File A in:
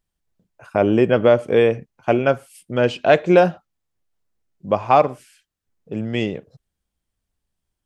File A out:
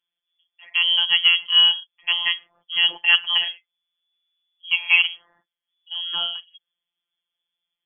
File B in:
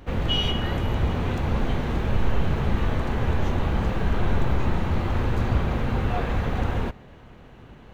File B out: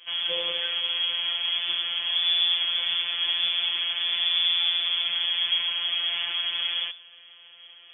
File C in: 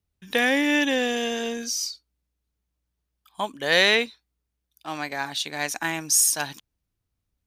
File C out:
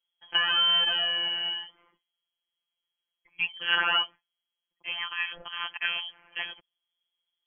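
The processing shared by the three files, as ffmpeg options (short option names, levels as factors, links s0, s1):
-filter_complex "[0:a]acrossover=split=2600[s0][s1];[s1]acompressor=threshold=0.0141:ratio=4:attack=1:release=60[s2];[s0][s2]amix=inputs=2:normalize=0,lowpass=f=2900:t=q:w=0.5098,lowpass=f=2900:t=q:w=0.6013,lowpass=f=2900:t=q:w=0.9,lowpass=f=2900:t=q:w=2.563,afreqshift=-3400,afftfilt=real='hypot(re,im)*cos(PI*b)':imag='0':win_size=1024:overlap=0.75,volume=1.12"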